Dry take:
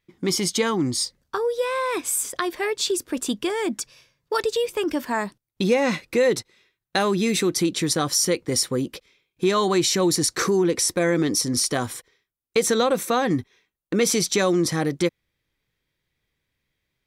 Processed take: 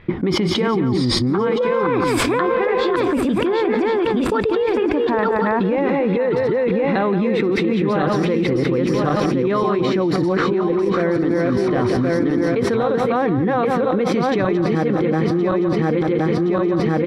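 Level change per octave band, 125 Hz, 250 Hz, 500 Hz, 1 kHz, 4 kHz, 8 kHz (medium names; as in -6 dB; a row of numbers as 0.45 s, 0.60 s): +8.5 dB, +7.5 dB, +6.5 dB, +6.5 dB, -2.5 dB, under -10 dB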